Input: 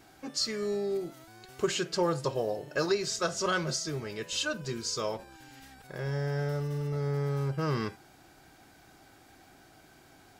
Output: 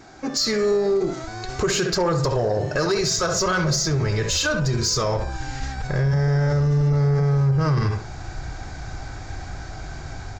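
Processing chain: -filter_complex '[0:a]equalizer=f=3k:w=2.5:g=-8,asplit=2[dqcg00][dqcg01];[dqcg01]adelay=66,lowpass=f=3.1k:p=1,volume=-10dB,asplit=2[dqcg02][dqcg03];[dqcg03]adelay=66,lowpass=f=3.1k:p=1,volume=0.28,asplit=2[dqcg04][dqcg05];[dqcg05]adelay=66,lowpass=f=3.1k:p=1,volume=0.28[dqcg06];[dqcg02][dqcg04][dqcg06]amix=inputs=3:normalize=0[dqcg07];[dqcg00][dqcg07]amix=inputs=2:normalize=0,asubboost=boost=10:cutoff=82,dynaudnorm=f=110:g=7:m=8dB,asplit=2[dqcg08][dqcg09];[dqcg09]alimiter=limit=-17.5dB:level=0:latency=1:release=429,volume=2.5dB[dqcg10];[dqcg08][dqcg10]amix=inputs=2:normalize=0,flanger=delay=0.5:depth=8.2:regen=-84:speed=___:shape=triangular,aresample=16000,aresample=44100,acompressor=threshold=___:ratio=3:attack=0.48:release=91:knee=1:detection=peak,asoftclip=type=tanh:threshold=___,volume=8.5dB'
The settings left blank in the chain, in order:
0.95, -25dB, -21dB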